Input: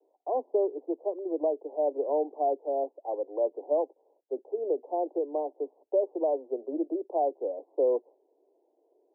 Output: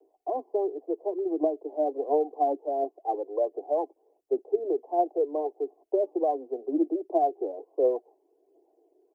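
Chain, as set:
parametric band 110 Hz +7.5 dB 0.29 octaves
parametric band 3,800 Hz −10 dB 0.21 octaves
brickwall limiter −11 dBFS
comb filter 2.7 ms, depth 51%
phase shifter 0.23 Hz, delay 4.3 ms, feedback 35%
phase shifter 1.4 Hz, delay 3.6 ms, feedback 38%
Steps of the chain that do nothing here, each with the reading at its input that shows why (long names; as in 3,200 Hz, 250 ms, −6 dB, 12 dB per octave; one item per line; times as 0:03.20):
parametric band 110 Hz: nothing at its input below 250 Hz
parametric band 3,800 Hz: nothing at its input above 960 Hz
brickwall limiter −11 dBFS: peak of its input −16.0 dBFS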